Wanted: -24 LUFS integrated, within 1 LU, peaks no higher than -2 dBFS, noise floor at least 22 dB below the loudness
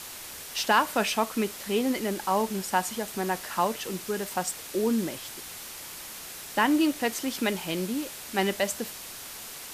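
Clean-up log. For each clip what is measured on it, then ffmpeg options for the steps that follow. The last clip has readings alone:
noise floor -41 dBFS; noise floor target -51 dBFS; loudness -29.0 LUFS; peak -9.5 dBFS; loudness target -24.0 LUFS
-> -af "afftdn=nr=10:nf=-41"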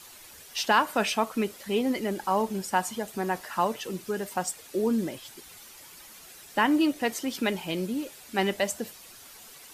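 noise floor -49 dBFS; noise floor target -51 dBFS
-> -af "afftdn=nr=6:nf=-49"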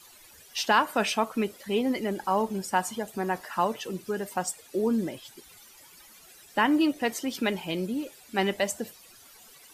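noise floor -53 dBFS; loudness -28.5 LUFS; peak -9.5 dBFS; loudness target -24.0 LUFS
-> -af "volume=4.5dB"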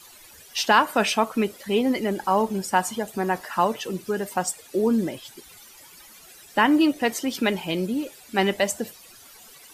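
loudness -24.0 LUFS; peak -5.0 dBFS; noise floor -49 dBFS

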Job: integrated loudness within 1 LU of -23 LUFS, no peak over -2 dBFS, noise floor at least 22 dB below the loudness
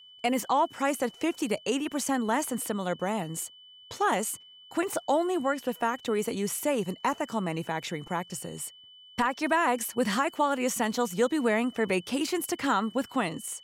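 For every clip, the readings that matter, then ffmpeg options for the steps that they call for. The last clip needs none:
steady tone 3000 Hz; tone level -50 dBFS; loudness -29.0 LUFS; peak -14.0 dBFS; loudness target -23.0 LUFS
-> -af "bandreject=f=3k:w=30"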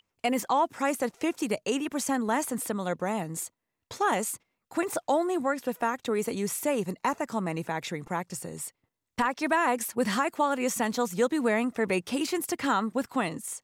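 steady tone none; loudness -29.0 LUFS; peak -14.0 dBFS; loudness target -23.0 LUFS
-> -af "volume=6dB"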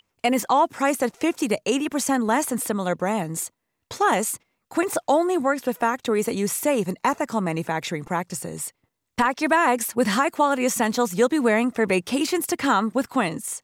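loudness -23.0 LUFS; peak -8.0 dBFS; noise floor -78 dBFS

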